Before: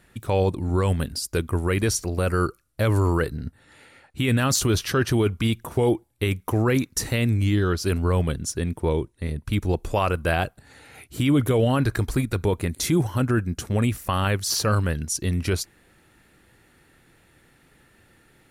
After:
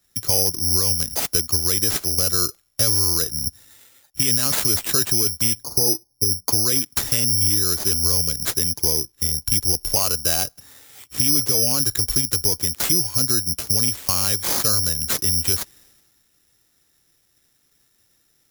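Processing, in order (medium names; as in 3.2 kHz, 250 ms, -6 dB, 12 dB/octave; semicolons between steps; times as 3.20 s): 5.63–6.48 s: low-pass 1.1 kHz 24 dB/octave; compression 5:1, threshold -30 dBFS, peak gain reduction 13.5 dB; careless resampling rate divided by 8×, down none, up zero stuff; three bands expanded up and down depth 70%; trim +3.5 dB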